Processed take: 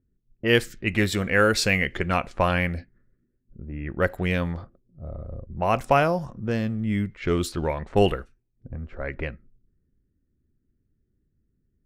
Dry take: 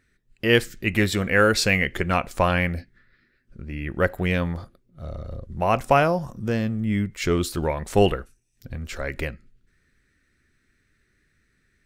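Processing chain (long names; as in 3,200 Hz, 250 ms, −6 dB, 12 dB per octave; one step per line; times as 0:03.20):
low-pass that shuts in the quiet parts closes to 320 Hz, open at −19 dBFS
level −1.5 dB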